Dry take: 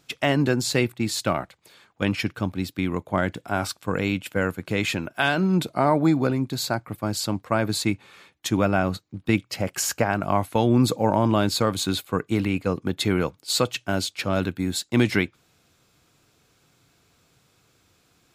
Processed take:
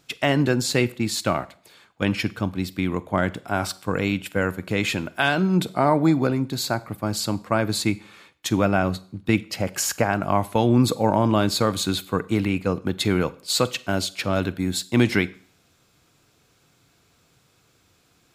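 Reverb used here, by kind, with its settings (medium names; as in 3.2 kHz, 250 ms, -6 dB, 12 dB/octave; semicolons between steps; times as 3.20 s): Schroeder reverb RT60 0.5 s, combs from 33 ms, DRR 18 dB; trim +1 dB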